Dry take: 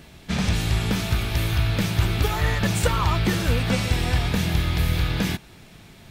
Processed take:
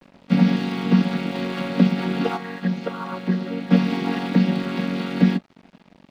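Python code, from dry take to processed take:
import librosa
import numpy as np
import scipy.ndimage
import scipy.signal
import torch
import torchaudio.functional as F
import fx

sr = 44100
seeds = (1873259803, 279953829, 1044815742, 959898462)

p1 = fx.chord_vocoder(x, sr, chord='major triad', root=54)
p2 = scipy.signal.sosfilt(scipy.signal.butter(6, 5300.0, 'lowpass', fs=sr, output='sos'), p1)
p3 = fx.rider(p2, sr, range_db=10, speed_s=2.0)
p4 = p2 + (p3 * 10.0 ** (-1.5 / 20.0))
p5 = np.sign(p4) * np.maximum(np.abs(p4) - 10.0 ** (-42.5 / 20.0), 0.0)
y = fx.comb_fb(p5, sr, f0_hz=180.0, decay_s=0.88, harmonics='odd', damping=0.0, mix_pct=60, at=(2.36, 3.7), fade=0.02)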